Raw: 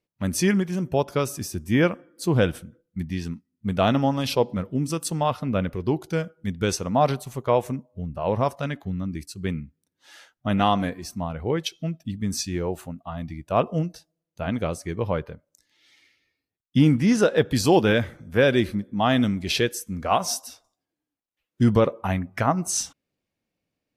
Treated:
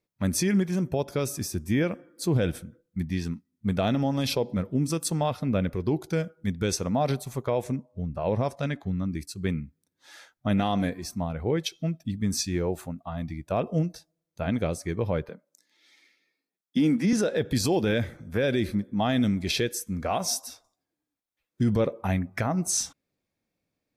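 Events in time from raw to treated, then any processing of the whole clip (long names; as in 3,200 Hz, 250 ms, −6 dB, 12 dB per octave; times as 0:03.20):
0:07.64–0:09.06: low-pass filter 10,000 Hz
0:15.29–0:17.13: Chebyshev high-pass filter 180 Hz, order 4
whole clip: notch filter 2,900 Hz, Q 8.2; dynamic equaliser 1,100 Hz, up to −7 dB, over −38 dBFS, Q 1.5; brickwall limiter −16 dBFS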